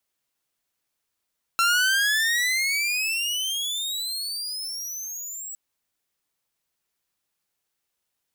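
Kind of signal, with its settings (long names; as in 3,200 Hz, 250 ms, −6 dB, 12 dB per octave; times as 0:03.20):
pitch glide with a swell saw, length 3.96 s, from 1,350 Hz, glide +30.5 semitones, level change −14 dB, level −15 dB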